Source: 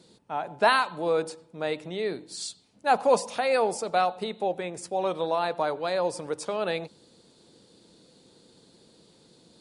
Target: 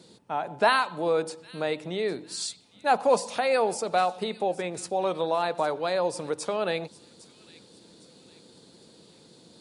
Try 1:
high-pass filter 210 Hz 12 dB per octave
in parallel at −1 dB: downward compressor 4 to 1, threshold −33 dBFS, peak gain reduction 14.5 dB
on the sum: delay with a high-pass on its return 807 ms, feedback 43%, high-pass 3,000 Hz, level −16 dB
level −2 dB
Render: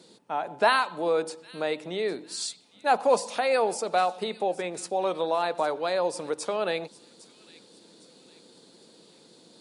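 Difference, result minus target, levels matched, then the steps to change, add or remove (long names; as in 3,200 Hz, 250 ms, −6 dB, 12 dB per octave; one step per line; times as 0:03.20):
125 Hz band −5.0 dB
change: high-pass filter 71 Hz 12 dB per octave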